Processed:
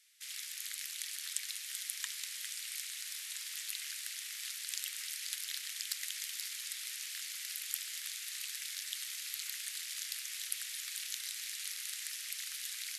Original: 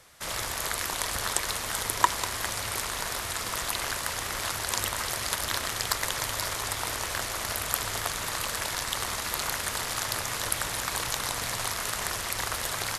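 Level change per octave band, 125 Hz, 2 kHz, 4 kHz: under -40 dB, -13.5 dB, -8.5 dB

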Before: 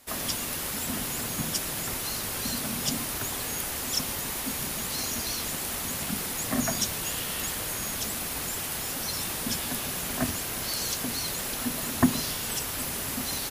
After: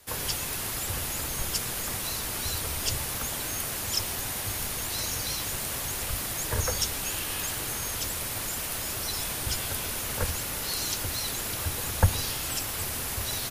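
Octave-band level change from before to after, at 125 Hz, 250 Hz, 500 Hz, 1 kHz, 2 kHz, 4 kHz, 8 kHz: +4.0 dB, -8.5 dB, -0.5 dB, -0.5 dB, 0.0 dB, 0.0 dB, 0.0 dB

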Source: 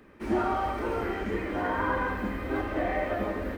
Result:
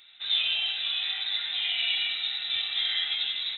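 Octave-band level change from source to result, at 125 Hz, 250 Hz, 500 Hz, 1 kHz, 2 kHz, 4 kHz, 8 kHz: under -25 dB, under -35 dB, under -25 dB, -20.0 dB, +1.0 dB, +26.5 dB, no reading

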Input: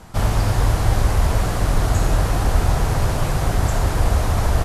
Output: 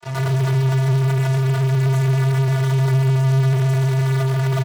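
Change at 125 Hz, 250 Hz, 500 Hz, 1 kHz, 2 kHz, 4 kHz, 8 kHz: +5.0 dB, no reading, +1.0 dB, -5.0 dB, -0.5 dB, -2.5 dB, -7.0 dB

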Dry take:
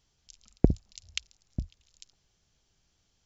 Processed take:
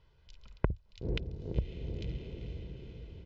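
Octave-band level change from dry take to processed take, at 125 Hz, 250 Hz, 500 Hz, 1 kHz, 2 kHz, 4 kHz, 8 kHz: -2.5 dB, -8.5 dB, -3.0 dB, +2.0 dB, -1.5 dB, -6.5 dB, no reading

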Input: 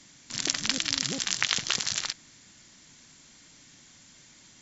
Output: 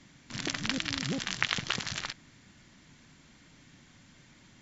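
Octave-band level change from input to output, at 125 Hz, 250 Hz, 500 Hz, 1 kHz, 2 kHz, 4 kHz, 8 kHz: +4.5 dB, +2.5 dB, +0.5 dB, 0.0 dB, -1.0 dB, -6.0 dB, no reading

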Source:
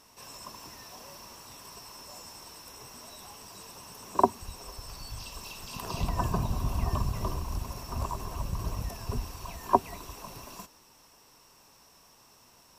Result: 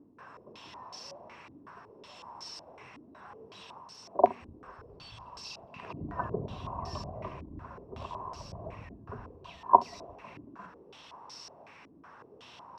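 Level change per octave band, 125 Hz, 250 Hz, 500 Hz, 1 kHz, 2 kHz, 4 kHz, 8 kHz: -10.5 dB, -6.0 dB, +1.5 dB, +1.5 dB, -3.0 dB, -4.0 dB, -12.0 dB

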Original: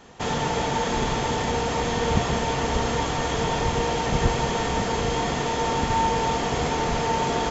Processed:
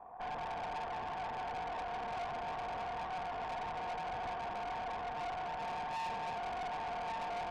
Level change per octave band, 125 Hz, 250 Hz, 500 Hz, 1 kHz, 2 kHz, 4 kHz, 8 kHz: -26.5 dB, -25.0 dB, -17.5 dB, -12.0 dB, -15.0 dB, -20.5 dB, no reading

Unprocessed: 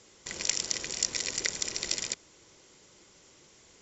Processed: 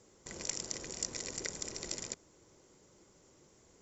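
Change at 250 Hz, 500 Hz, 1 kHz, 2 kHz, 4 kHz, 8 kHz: -1.5 dB, -2.0 dB, -5.0 dB, -10.5 dB, -11.0 dB, no reading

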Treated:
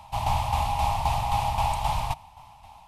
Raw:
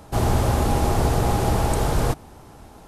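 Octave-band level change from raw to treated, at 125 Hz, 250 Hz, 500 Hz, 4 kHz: -8.5 dB, -17.5 dB, -12.0 dB, -1.5 dB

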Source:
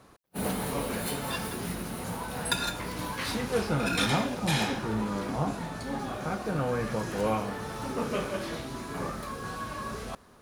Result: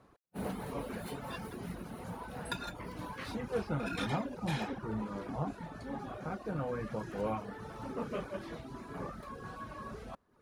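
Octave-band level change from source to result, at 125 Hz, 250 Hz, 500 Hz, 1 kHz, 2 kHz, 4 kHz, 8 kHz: -7.0 dB, -7.0 dB, -7.0 dB, -8.0 dB, -10.0 dB, -13.5 dB, -17.0 dB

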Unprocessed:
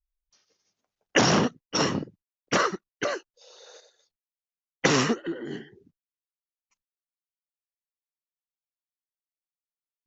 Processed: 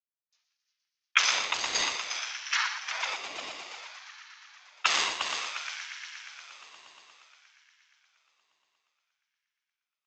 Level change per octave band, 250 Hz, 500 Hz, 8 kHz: -26.5 dB, -17.5 dB, no reading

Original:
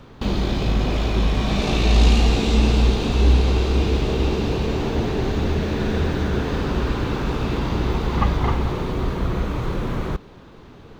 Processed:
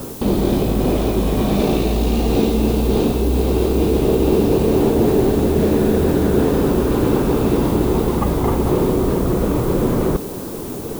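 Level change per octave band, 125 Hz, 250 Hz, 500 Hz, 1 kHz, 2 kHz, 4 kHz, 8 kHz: +0.5 dB, +7.5 dB, +9.0 dB, +3.0 dB, -2.5 dB, -3.0 dB, no reading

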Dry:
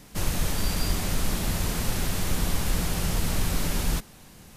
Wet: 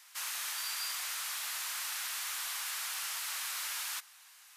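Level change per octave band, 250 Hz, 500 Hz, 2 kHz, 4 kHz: under -40 dB, -27.0 dB, -3.5 dB, -3.5 dB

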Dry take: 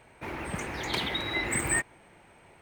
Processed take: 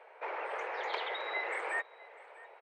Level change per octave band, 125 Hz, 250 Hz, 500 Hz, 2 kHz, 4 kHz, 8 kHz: under -40 dB, -21.0 dB, -1.5 dB, -5.0 dB, -11.0 dB, -28.0 dB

